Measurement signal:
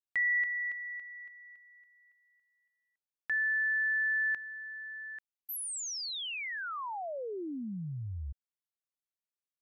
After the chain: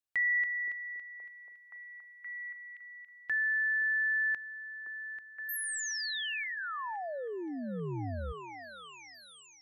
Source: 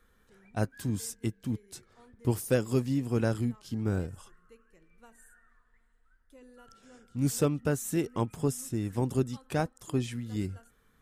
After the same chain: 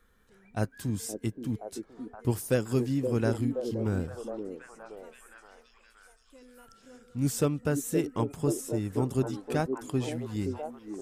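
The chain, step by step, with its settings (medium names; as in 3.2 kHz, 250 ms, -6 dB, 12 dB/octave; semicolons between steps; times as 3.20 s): repeats whose band climbs or falls 522 ms, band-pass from 370 Hz, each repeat 0.7 oct, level -2.5 dB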